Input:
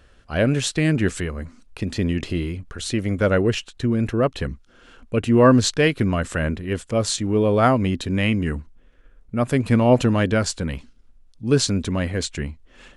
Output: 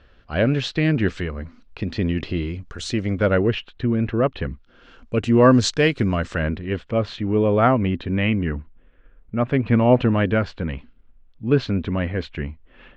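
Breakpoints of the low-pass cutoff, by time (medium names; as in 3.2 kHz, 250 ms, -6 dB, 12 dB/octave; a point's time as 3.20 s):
low-pass 24 dB/octave
2.34 s 4.5 kHz
2.78 s 7.7 kHz
3.42 s 3.5 kHz
4.47 s 3.5 kHz
5.16 s 7 kHz
5.99 s 7 kHz
7.04 s 3.1 kHz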